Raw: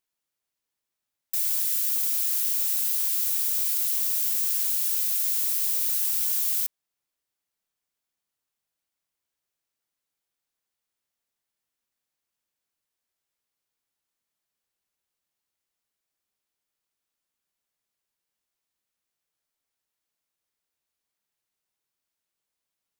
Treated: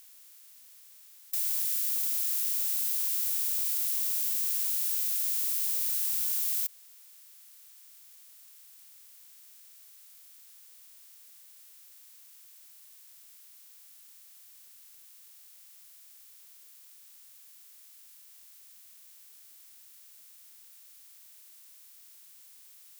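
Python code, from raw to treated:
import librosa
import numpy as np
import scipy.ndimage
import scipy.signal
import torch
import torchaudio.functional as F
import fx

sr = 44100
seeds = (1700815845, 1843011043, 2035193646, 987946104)

y = fx.bin_compress(x, sr, power=0.4)
y = fx.peak_eq(y, sr, hz=280.0, db=-6.5, octaves=2.0)
y = y * librosa.db_to_amplitude(-8.5)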